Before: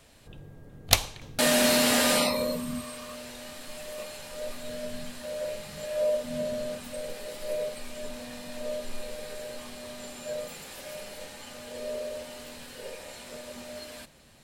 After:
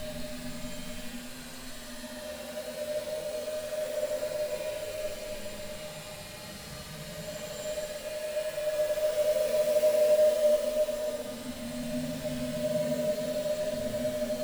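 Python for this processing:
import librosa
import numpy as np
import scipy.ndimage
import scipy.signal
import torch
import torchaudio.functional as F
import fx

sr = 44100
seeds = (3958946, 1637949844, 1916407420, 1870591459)

y = fx.quant_float(x, sr, bits=2)
y = fx.paulstretch(y, sr, seeds[0], factor=9.0, window_s=0.1, from_s=4.98)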